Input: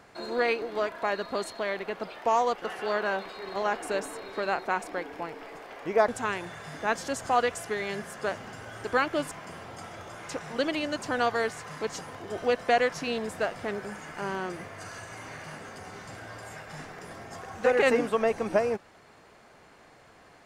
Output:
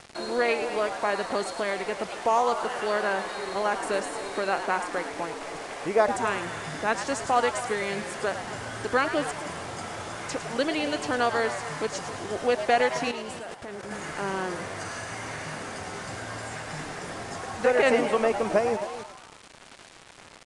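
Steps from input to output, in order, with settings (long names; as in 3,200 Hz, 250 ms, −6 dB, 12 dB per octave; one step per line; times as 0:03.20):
in parallel at +1.5 dB: downward compressor 6 to 1, threshold −41 dBFS, peak gain reduction 21.5 dB
on the sum: slap from a distant wall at 46 metres, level −14 dB
bit reduction 7 bits
0:13.11–0:13.91: output level in coarse steps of 19 dB
on a send: echo with shifted repeats 107 ms, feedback 51%, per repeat +140 Hz, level −10 dB
on the sum: downsampling to 22,050 Hz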